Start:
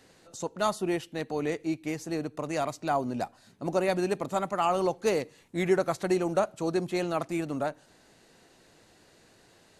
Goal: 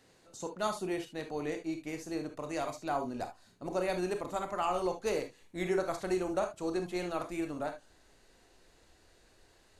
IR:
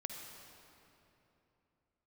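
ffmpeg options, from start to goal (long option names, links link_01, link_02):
-filter_complex "[0:a]asubboost=boost=8.5:cutoff=50[link_01];[1:a]atrim=start_sample=2205,afade=type=out:start_time=0.2:duration=0.01,atrim=end_sample=9261,asetrate=83790,aresample=44100[link_02];[link_01][link_02]afir=irnorm=-1:irlink=0,volume=3dB"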